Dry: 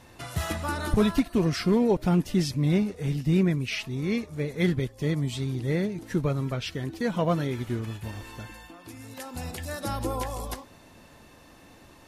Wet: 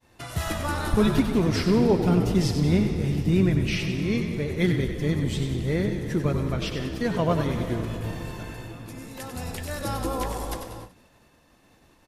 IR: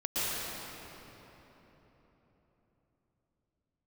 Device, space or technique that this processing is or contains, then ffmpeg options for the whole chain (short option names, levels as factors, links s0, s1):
keyed gated reverb: -filter_complex "[0:a]agate=range=0.0224:threshold=0.00562:ratio=3:detection=peak,asplit=6[s0][s1][s2][s3][s4][s5];[s1]adelay=95,afreqshift=-60,volume=0.422[s6];[s2]adelay=190,afreqshift=-120,volume=0.195[s7];[s3]adelay=285,afreqshift=-180,volume=0.0891[s8];[s4]adelay=380,afreqshift=-240,volume=0.0412[s9];[s5]adelay=475,afreqshift=-300,volume=0.0188[s10];[s0][s6][s7][s8][s9][s10]amix=inputs=6:normalize=0,asplit=3[s11][s12][s13];[1:a]atrim=start_sample=2205[s14];[s12][s14]afir=irnorm=-1:irlink=0[s15];[s13]apad=whole_len=553471[s16];[s15][s16]sidechaingate=range=0.0224:threshold=0.00282:ratio=16:detection=peak,volume=0.15[s17];[s11][s17]amix=inputs=2:normalize=0"